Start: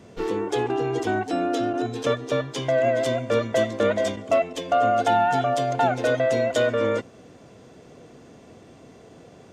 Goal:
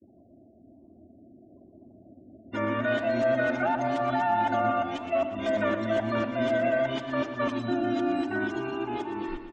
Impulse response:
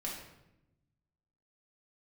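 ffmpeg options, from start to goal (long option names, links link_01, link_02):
-filter_complex "[0:a]areverse,afftfilt=real='re*gte(hypot(re,im),0.00891)':imag='im*gte(hypot(re,im),0.00891)':win_size=1024:overlap=0.75,acrossover=split=2700[link_01][link_02];[link_02]acompressor=threshold=-45dB:ratio=4:attack=1:release=60[link_03];[link_01][link_03]amix=inputs=2:normalize=0,equalizer=frequency=500:width=2.6:gain=-15,bandreject=frequency=50:width_type=h:width=6,bandreject=frequency=100:width_type=h:width=6,bandreject=frequency=150:width_type=h:width=6,bandreject=frequency=200:width_type=h:width=6,bandreject=frequency=250:width_type=h:width=6,bandreject=frequency=300:width_type=h:width=6,aecho=1:1:3.3:0.77,alimiter=limit=-17.5dB:level=0:latency=1:release=44,dynaudnorm=framelen=330:gausssize=9:maxgain=4.5dB,asoftclip=type=tanh:threshold=-4.5dB,highshelf=frequency=5400:gain=-10.5,flanger=delay=3.8:depth=8.3:regen=-90:speed=0.94:shape=sinusoidal,aecho=1:1:119|238|357|476|595|714|833:0.299|0.173|0.1|0.0582|0.0338|0.0196|0.0114"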